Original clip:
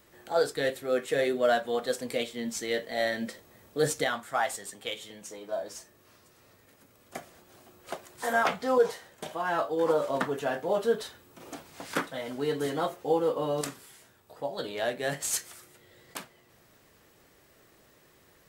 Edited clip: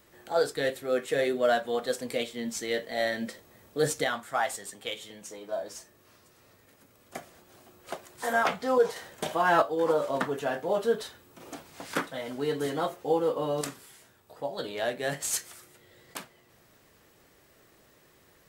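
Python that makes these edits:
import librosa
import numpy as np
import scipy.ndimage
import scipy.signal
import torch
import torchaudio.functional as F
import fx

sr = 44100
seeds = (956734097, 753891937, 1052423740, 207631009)

y = fx.edit(x, sr, fx.clip_gain(start_s=8.96, length_s=0.66, db=6.5), tone=tone)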